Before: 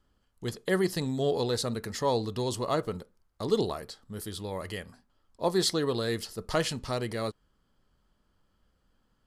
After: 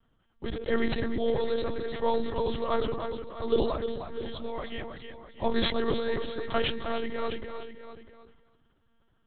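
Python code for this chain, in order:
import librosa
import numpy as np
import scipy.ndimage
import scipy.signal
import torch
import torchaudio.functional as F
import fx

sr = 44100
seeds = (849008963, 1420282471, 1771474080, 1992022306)

y = fx.tracing_dist(x, sr, depth_ms=0.04)
y = fx.echo_feedback(y, sr, ms=308, feedback_pct=16, wet_db=-7.5)
y = fx.lpc_monotone(y, sr, seeds[0], pitch_hz=230.0, order=10)
y = y + 10.0 ** (-13.5 / 20.0) * np.pad(y, (int(650 * sr / 1000.0), 0))[:len(y)]
y = fx.sustainer(y, sr, db_per_s=48.0)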